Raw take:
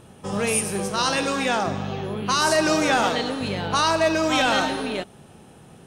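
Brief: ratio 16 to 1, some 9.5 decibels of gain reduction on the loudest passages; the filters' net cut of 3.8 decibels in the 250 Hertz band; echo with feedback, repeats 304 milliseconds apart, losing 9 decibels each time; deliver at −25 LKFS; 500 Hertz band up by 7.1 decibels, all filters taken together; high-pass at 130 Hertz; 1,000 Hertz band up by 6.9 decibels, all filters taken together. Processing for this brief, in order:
high-pass filter 130 Hz
parametric band 250 Hz −8.5 dB
parametric band 500 Hz +8.5 dB
parametric band 1,000 Hz +6.5 dB
downward compressor 16 to 1, threshold −19 dBFS
repeating echo 304 ms, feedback 35%, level −9 dB
level −1.5 dB

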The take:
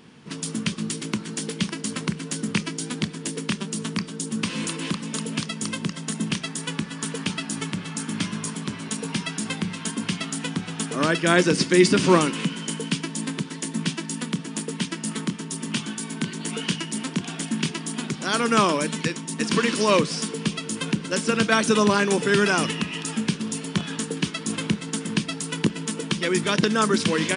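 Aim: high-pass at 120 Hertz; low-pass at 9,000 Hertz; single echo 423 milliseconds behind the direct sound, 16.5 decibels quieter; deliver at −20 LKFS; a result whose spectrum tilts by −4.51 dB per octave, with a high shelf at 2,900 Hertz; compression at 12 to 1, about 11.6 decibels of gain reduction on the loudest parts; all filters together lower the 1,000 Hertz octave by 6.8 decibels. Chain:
high-pass filter 120 Hz
low-pass filter 9,000 Hz
parametric band 1,000 Hz −8 dB
high-shelf EQ 2,900 Hz −5.5 dB
downward compressor 12 to 1, threshold −24 dBFS
single-tap delay 423 ms −16.5 dB
level +11 dB

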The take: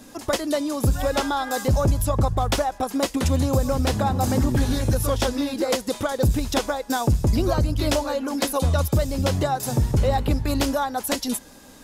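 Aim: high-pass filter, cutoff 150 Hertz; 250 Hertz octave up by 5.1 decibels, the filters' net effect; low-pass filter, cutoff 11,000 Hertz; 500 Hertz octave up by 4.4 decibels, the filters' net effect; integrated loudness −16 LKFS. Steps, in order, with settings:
high-pass filter 150 Hz
low-pass filter 11,000 Hz
parametric band 250 Hz +5.5 dB
parametric band 500 Hz +4 dB
level +5 dB

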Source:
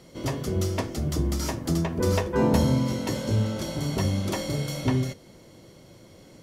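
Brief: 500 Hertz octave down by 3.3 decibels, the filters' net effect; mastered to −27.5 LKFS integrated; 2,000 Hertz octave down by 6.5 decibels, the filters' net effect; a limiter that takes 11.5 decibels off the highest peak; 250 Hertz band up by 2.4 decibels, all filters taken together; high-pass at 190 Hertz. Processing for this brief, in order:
high-pass filter 190 Hz
parametric band 250 Hz +6.5 dB
parametric band 500 Hz −6 dB
parametric band 2,000 Hz −8 dB
level +4 dB
brickwall limiter −18 dBFS

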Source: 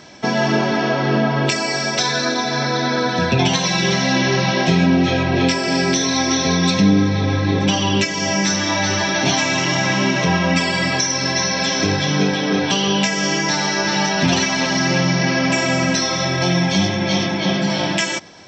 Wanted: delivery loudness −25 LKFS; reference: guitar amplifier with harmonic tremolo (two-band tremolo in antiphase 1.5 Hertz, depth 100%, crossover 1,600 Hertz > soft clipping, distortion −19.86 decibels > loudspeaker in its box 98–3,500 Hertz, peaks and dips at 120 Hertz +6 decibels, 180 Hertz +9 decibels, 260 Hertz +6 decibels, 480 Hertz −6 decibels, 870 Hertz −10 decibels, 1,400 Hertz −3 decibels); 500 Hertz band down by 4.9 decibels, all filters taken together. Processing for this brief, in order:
parametric band 500 Hz −3.5 dB
two-band tremolo in antiphase 1.5 Hz, depth 100%, crossover 1,600 Hz
soft clipping −13 dBFS
loudspeaker in its box 98–3,500 Hz, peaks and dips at 120 Hz +6 dB, 180 Hz +9 dB, 260 Hz +6 dB, 480 Hz −6 dB, 870 Hz −10 dB, 1,400 Hz −3 dB
level −4.5 dB

